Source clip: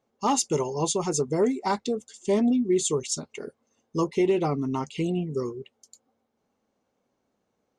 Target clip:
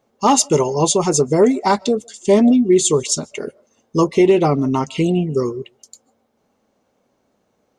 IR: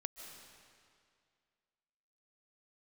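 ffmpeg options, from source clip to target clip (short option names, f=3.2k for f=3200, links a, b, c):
-filter_complex "[0:a]asplit=2[a][b];[b]equalizer=f=610:w=3.4:g=11.5[c];[1:a]atrim=start_sample=2205,afade=t=out:st=0.21:d=0.01,atrim=end_sample=9702[d];[c][d]afir=irnorm=-1:irlink=0,volume=-12dB[e];[a][e]amix=inputs=2:normalize=0,volume=8.5dB"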